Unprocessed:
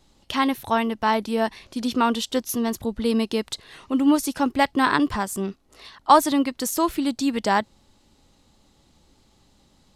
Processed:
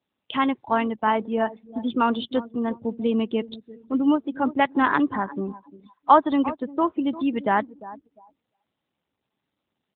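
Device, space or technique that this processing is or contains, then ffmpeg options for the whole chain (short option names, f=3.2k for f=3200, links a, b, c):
mobile call with aggressive noise cancelling: -filter_complex "[0:a]highpass=110,lowshelf=f=110:g=-2.5,asplit=2[a][b];[b]adelay=349,lowpass=f=3.2k:p=1,volume=-15.5dB,asplit=2[c][d];[d]adelay=349,lowpass=f=3.2k:p=1,volume=0.39,asplit=2[e][f];[f]adelay=349,lowpass=f=3.2k:p=1,volume=0.39[g];[a][c][e][g]amix=inputs=4:normalize=0,afftdn=nr=29:nf=-32" -ar 8000 -c:a libopencore_amrnb -b:a 12200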